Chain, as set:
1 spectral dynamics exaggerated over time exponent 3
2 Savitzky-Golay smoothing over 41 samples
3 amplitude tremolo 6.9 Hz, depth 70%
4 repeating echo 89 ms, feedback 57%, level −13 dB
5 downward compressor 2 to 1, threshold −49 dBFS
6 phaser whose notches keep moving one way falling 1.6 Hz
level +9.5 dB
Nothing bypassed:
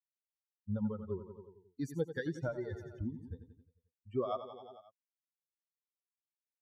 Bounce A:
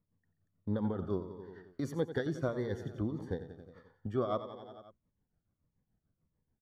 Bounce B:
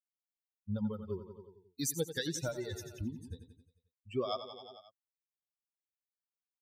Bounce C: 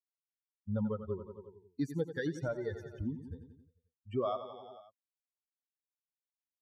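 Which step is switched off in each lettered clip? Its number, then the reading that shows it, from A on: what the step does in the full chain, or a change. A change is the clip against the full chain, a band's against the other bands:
1, change in momentary loudness spread −2 LU
2, 4 kHz band +15.5 dB
3, change in crest factor −2.0 dB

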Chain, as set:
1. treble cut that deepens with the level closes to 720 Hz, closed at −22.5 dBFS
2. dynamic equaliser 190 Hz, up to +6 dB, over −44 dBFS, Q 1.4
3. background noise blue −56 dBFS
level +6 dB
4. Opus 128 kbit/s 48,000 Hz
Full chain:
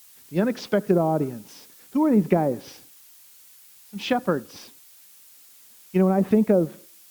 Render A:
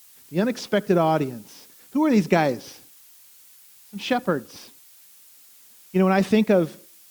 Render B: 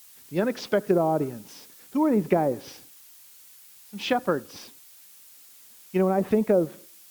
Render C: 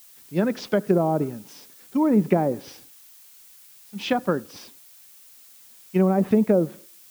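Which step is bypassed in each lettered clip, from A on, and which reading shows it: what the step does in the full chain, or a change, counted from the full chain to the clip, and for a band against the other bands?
1, 2 kHz band +4.5 dB
2, 125 Hz band −5.0 dB
4, change in momentary loudness spread +1 LU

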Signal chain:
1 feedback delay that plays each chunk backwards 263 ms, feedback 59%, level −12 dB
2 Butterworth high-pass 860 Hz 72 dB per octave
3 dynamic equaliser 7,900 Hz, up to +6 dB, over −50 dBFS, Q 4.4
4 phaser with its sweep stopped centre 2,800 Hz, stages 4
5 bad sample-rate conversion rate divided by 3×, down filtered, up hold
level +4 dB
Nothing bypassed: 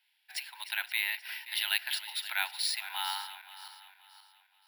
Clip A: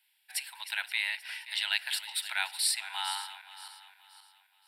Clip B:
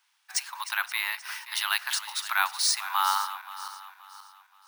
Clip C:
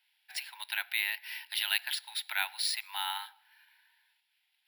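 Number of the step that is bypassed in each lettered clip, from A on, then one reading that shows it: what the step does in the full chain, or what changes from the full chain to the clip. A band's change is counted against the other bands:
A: 5, 8 kHz band +6.0 dB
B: 4, 1 kHz band +8.5 dB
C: 1, change in momentary loudness spread −6 LU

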